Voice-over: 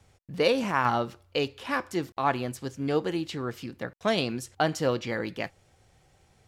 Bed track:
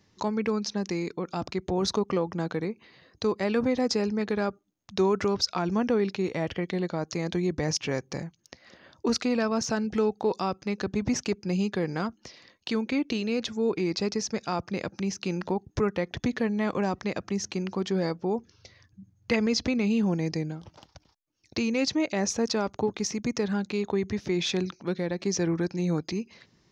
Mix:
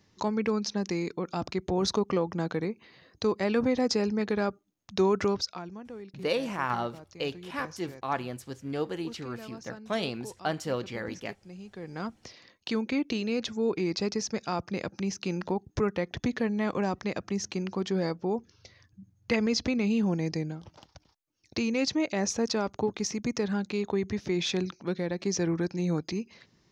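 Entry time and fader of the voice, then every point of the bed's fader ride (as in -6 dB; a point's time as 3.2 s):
5.85 s, -5.0 dB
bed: 5.3 s -0.5 dB
5.8 s -18 dB
11.67 s -18 dB
12.13 s -1.5 dB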